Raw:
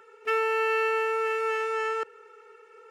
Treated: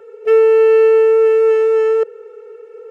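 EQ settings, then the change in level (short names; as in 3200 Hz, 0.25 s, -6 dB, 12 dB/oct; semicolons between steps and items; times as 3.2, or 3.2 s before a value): low shelf 330 Hz +11 dB; band shelf 540 Hz +15 dB 1 oct; 0.0 dB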